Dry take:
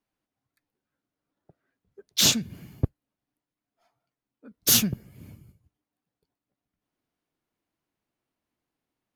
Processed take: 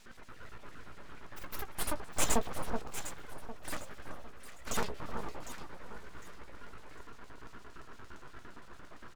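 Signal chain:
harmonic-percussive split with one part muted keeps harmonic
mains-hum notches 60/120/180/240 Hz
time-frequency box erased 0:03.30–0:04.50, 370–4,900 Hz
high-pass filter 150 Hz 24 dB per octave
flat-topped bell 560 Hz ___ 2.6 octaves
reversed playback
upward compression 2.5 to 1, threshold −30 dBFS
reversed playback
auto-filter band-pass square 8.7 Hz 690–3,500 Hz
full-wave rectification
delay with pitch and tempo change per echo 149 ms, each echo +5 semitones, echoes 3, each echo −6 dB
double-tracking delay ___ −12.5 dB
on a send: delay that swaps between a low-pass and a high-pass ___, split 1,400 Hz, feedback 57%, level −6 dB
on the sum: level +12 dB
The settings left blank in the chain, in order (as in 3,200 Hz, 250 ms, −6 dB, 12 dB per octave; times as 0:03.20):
+12 dB, 17 ms, 377 ms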